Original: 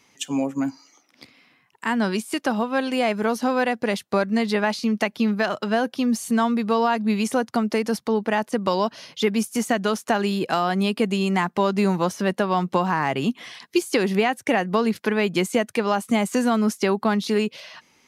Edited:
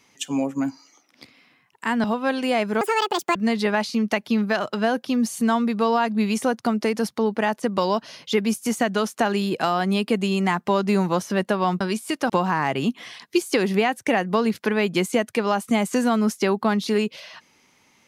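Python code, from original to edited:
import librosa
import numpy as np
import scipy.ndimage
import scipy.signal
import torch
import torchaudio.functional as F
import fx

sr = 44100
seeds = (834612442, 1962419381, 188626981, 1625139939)

y = fx.edit(x, sr, fx.move(start_s=2.04, length_s=0.49, to_s=12.7),
    fx.speed_span(start_s=3.3, length_s=0.95, speed=1.74), tone=tone)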